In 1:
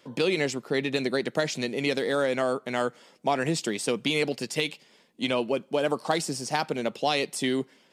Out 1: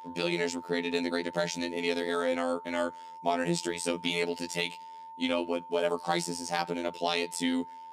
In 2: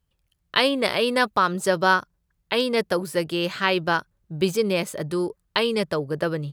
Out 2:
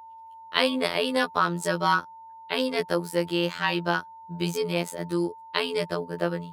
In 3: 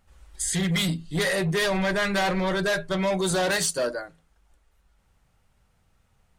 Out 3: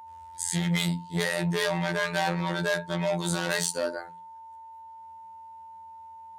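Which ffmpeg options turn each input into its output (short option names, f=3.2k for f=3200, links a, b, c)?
-af "afftfilt=real='hypot(re,im)*cos(PI*b)':imag='0':win_size=2048:overlap=0.75,highpass=62,aeval=exprs='val(0)+0.00708*sin(2*PI*900*n/s)':c=same"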